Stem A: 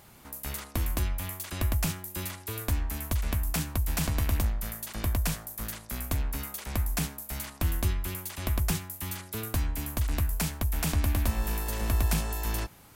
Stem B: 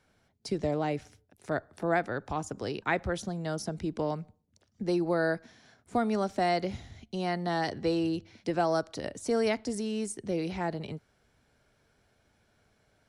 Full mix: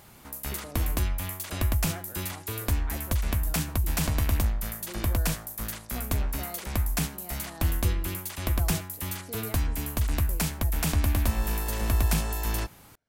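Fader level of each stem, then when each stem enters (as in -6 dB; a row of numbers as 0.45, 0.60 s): +2.0, -15.5 dB; 0.00, 0.00 s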